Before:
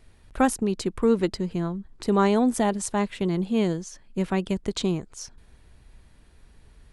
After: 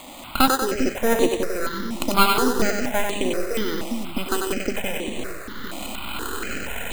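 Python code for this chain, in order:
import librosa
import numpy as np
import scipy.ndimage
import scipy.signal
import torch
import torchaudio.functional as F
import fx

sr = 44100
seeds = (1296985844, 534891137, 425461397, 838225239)

p1 = fx.recorder_agc(x, sr, target_db=-16.0, rise_db_per_s=35.0, max_gain_db=30)
p2 = fx.highpass(p1, sr, hz=62.0, slope=6)
p3 = fx.low_shelf(p2, sr, hz=190.0, db=-9.0)
p4 = np.sign(p3) * np.maximum(np.abs(p3) - 10.0 ** (-34.5 / 20.0), 0.0)
p5 = p3 + (p4 * librosa.db_to_amplitude(-4.0))
p6 = fx.small_body(p5, sr, hz=(1400.0, 2500.0), ring_ms=20, db=18)
p7 = np.maximum(p6, 0.0)
p8 = fx.quant_dither(p7, sr, seeds[0], bits=6, dither='triangular')
p9 = fx.graphic_eq_10(p8, sr, hz=(125, 250, 500, 2000, 4000, 8000), db=(-9, 10, 8, 6, -4, -11))
p10 = p9 + fx.echo_split(p9, sr, split_hz=320.0, low_ms=399, high_ms=94, feedback_pct=52, wet_db=-4, dry=0)
p11 = np.repeat(p10[::8], 8)[:len(p10)]
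p12 = fx.phaser_held(p11, sr, hz=4.2, low_hz=430.0, high_hz=5100.0)
y = p12 * librosa.db_to_amplitude(-1.0)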